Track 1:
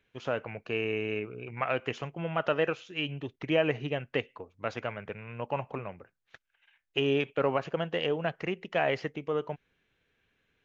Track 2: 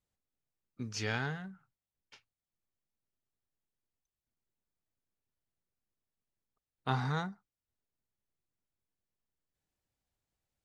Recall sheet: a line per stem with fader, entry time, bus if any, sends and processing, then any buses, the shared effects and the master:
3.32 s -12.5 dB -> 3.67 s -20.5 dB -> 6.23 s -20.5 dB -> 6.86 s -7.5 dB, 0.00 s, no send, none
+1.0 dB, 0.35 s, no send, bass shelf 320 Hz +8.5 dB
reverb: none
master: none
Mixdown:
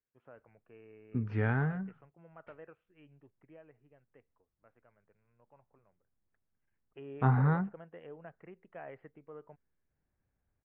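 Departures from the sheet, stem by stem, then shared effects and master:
stem 1 -12.5 dB -> -23.5 dB; master: extra low-pass 1.9 kHz 24 dB/octave

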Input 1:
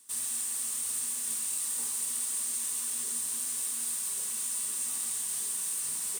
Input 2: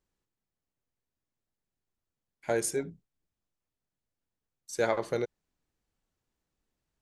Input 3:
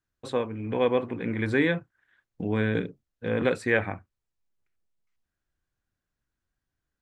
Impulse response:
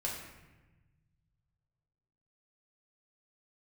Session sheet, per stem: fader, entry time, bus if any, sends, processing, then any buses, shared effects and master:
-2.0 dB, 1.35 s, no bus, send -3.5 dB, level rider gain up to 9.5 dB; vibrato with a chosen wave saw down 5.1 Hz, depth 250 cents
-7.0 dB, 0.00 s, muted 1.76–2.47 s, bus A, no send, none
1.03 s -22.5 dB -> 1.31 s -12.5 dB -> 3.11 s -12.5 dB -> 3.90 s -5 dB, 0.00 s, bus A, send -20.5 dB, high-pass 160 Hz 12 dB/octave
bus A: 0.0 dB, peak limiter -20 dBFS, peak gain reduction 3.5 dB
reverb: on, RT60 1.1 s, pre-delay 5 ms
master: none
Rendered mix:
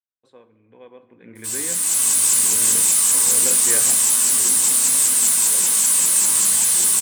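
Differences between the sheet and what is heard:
stem 2: muted; reverb return +9.5 dB

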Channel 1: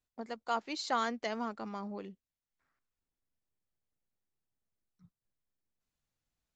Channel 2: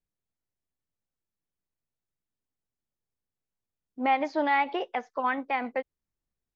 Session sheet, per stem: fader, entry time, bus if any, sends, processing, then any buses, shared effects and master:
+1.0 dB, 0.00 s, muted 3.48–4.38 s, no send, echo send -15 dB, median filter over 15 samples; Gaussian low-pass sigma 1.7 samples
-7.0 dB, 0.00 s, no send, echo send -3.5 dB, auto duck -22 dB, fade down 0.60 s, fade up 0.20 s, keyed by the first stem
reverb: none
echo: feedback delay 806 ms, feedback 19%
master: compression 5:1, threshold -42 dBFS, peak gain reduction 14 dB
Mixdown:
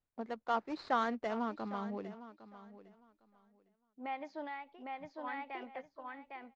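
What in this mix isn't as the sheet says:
stem 2 -7.0 dB -> -16.0 dB; master: missing compression 5:1, threshold -42 dBFS, peak gain reduction 14 dB

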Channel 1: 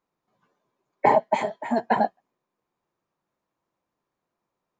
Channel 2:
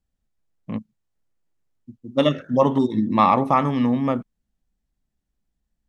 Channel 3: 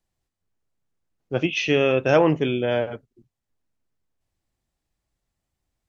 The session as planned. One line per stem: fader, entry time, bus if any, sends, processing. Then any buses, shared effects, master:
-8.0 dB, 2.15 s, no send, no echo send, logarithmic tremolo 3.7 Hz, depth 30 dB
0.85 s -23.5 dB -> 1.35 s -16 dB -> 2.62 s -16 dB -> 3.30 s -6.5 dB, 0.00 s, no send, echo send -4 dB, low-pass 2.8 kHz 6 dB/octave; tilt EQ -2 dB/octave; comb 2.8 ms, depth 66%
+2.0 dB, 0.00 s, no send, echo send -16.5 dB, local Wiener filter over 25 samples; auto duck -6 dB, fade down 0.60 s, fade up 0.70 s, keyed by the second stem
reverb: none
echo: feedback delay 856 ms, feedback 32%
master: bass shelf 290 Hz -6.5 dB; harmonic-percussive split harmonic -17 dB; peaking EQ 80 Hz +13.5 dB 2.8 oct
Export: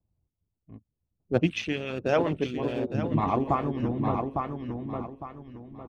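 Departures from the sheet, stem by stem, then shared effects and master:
stem 1 -8.0 dB -> -16.5 dB; master: missing bass shelf 290 Hz -6.5 dB

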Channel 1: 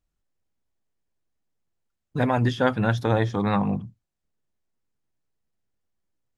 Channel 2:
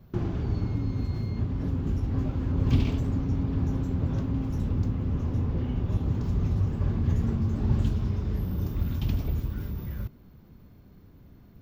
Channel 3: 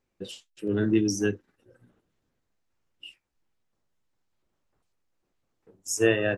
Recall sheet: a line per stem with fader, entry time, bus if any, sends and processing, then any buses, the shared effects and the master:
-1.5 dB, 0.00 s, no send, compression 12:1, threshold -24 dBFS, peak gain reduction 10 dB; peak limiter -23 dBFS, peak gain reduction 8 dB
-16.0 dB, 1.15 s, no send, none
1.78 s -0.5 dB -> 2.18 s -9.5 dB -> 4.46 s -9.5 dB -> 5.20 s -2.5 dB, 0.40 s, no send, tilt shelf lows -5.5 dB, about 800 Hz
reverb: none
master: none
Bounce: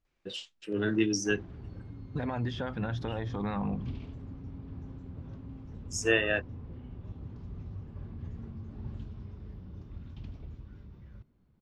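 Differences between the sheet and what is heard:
stem 3: entry 0.40 s -> 0.05 s; master: extra low-pass 4.6 kHz 12 dB/octave

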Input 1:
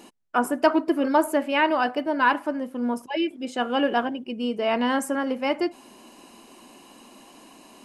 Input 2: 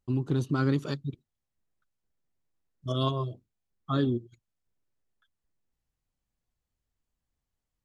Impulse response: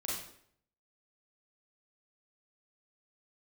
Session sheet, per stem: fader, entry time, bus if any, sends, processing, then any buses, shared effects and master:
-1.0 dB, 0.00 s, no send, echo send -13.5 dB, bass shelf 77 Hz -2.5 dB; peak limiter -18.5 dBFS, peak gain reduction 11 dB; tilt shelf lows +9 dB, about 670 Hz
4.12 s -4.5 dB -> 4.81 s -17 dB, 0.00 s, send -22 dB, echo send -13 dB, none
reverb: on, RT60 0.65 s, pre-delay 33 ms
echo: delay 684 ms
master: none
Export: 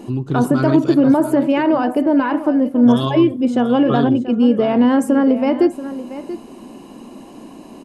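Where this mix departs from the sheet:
stem 1 -1.0 dB -> +9.0 dB; stem 2 -4.5 dB -> +6.0 dB

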